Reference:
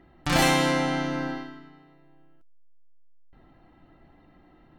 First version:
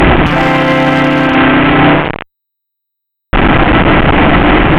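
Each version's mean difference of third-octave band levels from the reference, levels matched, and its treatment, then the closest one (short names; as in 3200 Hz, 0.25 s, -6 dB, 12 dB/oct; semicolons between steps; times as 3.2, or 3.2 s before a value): 17.0 dB: delta modulation 16 kbps, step -25 dBFS; in parallel at +2 dB: negative-ratio compressor -27 dBFS, ratio -0.5; on the sum: one-sided clip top -18 dBFS; maximiser +20.5 dB; gain -1 dB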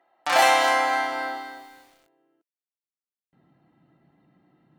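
7.0 dB: dynamic EQ 1800 Hz, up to +3 dB, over -35 dBFS, Q 1.1; gate -45 dBFS, range -8 dB; high-pass sweep 700 Hz -> 150 Hz, 1.58–3.44; lo-fi delay 0.255 s, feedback 35%, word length 8-bit, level -10 dB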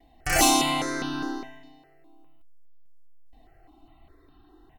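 5.0 dB: gate with hold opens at -48 dBFS; high shelf 3100 Hz +8.5 dB; comb 2.7 ms, depth 73%; step phaser 4.9 Hz 370–2100 Hz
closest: third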